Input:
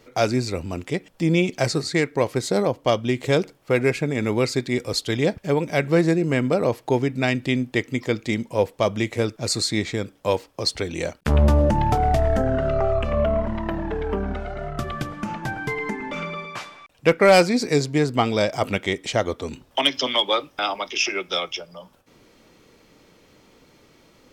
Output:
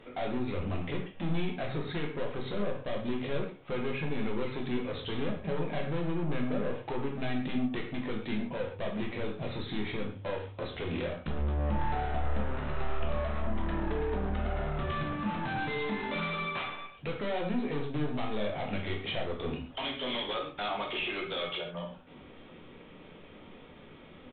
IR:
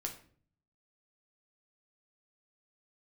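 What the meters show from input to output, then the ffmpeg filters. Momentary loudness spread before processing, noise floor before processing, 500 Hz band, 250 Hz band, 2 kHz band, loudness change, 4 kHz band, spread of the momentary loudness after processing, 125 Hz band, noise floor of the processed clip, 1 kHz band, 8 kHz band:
10 LU, -57 dBFS, -13.5 dB, -10.0 dB, -11.0 dB, -12.0 dB, -12.5 dB, 7 LU, -11.0 dB, -51 dBFS, -11.0 dB, under -40 dB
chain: -filter_complex "[0:a]bandreject=f=50:t=h:w=6,bandreject=f=100:t=h:w=6,acompressor=threshold=-26dB:ratio=6,aresample=8000,asoftclip=type=tanh:threshold=-33.5dB,aresample=44100[a];[1:a]atrim=start_sample=2205,atrim=end_sample=3528,asetrate=23814,aresample=44100[b];[a][b]afir=irnorm=-1:irlink=0"

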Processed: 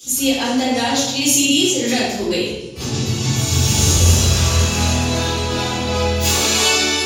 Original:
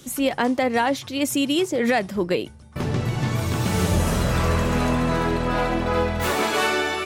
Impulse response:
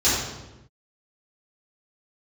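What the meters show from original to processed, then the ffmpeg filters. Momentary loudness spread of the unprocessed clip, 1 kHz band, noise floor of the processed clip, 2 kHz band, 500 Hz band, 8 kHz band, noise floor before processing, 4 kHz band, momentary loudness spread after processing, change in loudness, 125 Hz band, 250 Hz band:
4 LU, +0.5 dB, -26 dBFS, +3.5 dB, +1.0 dB, +16.5 dB, -41 dBFS, +12.5 dB, 7 LU, +6.5 dB, +6.5 dB, +3.5 dB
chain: -filter_complex "[0:a]aexciter=amount=5.3:drive=3.9:freq=2.5k[a];[1:a]atrim=start_sample=2205[b];[a][b]afir=irnorm=-1:irlink=0,volume=-17.5dB"

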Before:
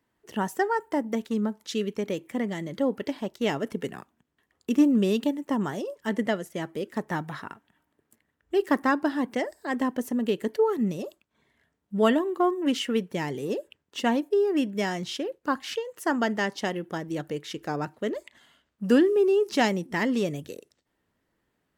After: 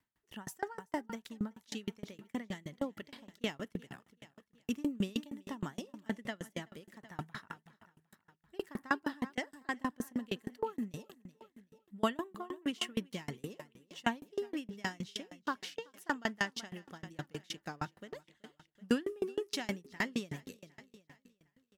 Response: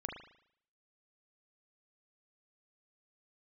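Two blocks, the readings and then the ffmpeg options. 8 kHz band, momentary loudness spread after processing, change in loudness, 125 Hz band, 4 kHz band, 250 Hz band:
-7.0 dB, 17 LU, -12.5 dB, -10.0 dB, -7.5 dB, -13.0 dB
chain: -af "equalizer=f=440:w=0.72:g=-9.5,aecho=1:1:379|758|1137|1516:0.158|0.0761|0.0365|0.0175,aeval=exprs='val(0)*pow(10,-31*if(lt(mod(6.4*n/s,1),2*abs(6.4)/1000),1-mod(6.4*n/s,1)/(2*abs(6.4)/1000),(mod(6.4*n/s,1)-2*abs(6.4)/1000)/(1-2*abs(6.4)/1000))/20)':c=same,volume=1dB"

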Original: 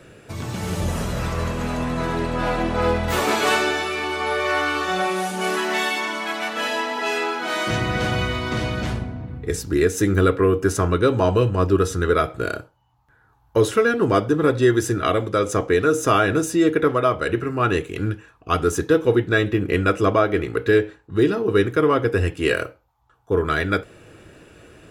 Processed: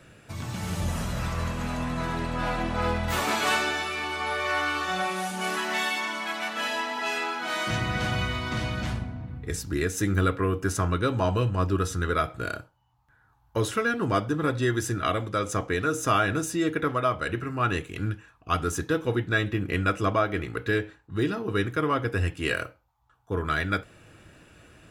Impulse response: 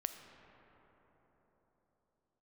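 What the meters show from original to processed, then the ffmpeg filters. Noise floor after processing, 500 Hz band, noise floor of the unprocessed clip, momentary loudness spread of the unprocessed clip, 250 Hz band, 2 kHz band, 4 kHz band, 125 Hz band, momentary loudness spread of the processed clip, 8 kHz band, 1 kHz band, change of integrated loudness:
-63 dBFS, -10.0 dB, -58 dBFS, 8 LU, -7.5 dB, -4.0 dB, -4.0 dB, -4.5 dB, 7 LU, -4.0 dB, -4.5 dB, -6.5 dB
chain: -af "equalizer=f=420:t=o:w=0.84:g=-8,volume=-4dB"

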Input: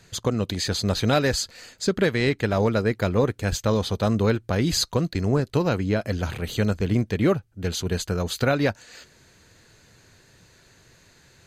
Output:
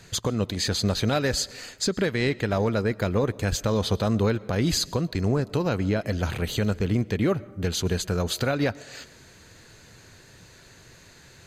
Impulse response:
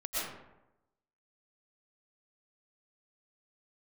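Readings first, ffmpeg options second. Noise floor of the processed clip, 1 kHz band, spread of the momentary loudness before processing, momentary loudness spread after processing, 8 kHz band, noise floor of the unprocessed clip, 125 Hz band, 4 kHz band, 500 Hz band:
-52 dBFS, -2.5 dB, 6 LU, 4 LU, +0.5 dB, -57 dBFS, -1.5 dB, -0.5 dB, -2.5 dB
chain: -filter_complex "[0:a]alimiter=limit=-19dB:level=0:latency=1:release=346,asplit=2[a][b];[1:a]atrim=start_sample=2205[c];[b][c]afir=irnorm=-1:irlink=0,volume=-25dB[d];[a][d]amix=inputs=2:normalize=0,volume=4dB"

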